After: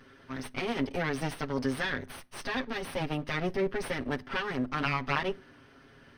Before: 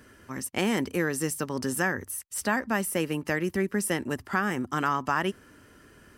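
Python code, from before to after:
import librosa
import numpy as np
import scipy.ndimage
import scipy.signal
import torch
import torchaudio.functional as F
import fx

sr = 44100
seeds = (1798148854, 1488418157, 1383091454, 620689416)

y = fx.lower_of_two(x, sr, delay_ms=7.4)
y = scipy.signal.savgol_filter(y, 15, 4, mode='constant')
y = fx.rev_fdn(y, sr, rt60_s=0.43, lf_ratio=1.5, hf_ratio=0.8, size_ms=24.0, drr_db=19.5)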